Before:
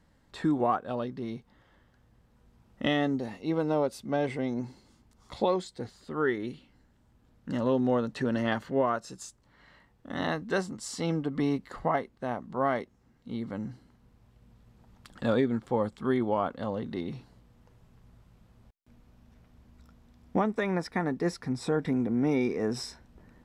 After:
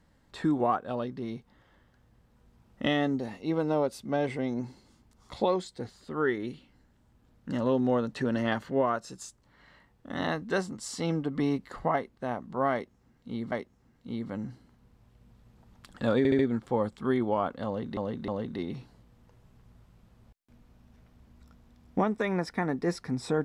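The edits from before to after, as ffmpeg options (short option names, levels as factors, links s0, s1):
-filter_complex "[0:a]asplit=7[s0][s1][s2][s3][s4][s5][s6];[s0]atrim=end=13.522[s7];[s1]atrim=start=12.728:end=15.462[s8];[s2]atrim=start=15.388:end=15.462[s9];[s3]atrim=start=15.388:end=15.462[s10];[s4]atrim=start=15.388:end=16.972[s11];[s5]atrim=start=16.658:end=16.972[s12];[s6]atrim=start=16.658[s13];[s7][s8]acrossfade=d=0.004:c1=hsin:c2=hsin[s14];[s14][s9]acrossfade=d=0.004:c1=hsin:c2=hsin[s15];[s15][s10]acrossfade=d=0.004:c1=hsin:c2=hsin[s16];[s16][s11]acrossfade=d=0.004:c1=hsin:c2=hsin[s17];[s17][s12]acrossfade=d=0.004:c1=hsin:c2=hsin[s18];[s18][s13]acrossfade=d=0.004:c1=hsin:c2=hsin"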